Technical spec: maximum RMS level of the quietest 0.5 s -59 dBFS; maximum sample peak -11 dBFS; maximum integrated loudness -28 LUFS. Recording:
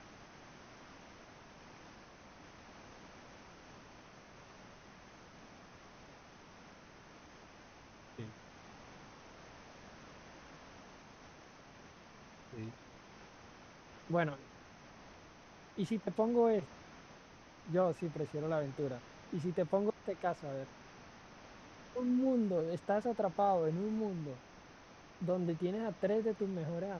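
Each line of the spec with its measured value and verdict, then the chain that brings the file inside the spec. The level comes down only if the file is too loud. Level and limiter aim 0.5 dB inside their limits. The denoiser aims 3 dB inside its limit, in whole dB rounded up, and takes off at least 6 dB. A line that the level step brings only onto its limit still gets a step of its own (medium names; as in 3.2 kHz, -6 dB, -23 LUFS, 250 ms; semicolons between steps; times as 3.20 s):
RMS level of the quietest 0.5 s -58 dBFS: fail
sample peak -19.5 dBFS: pass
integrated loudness -36.5 LUFS: pass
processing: noise reduction 6 dB, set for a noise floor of -58 dBFS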